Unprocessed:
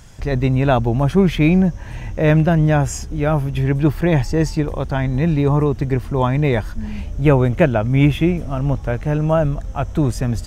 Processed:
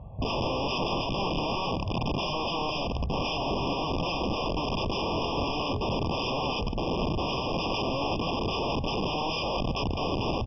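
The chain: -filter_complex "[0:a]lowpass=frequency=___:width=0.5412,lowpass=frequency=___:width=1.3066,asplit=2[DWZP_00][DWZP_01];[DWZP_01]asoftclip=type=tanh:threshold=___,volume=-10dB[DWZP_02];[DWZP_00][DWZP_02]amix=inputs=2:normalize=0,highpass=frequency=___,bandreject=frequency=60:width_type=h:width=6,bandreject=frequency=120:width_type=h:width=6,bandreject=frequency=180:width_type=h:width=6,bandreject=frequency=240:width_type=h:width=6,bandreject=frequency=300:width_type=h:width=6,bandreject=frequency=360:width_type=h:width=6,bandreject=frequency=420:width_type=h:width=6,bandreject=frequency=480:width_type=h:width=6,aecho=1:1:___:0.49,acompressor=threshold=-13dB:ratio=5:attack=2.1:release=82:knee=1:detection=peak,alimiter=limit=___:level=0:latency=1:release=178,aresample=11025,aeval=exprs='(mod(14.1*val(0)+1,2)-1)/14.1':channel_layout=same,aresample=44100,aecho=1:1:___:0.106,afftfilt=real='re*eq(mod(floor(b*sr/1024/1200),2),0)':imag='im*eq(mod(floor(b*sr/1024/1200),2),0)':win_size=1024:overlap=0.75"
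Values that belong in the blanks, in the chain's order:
1.5k, 1.5k, -18dB, 53, 1.5, -13.5dB, 140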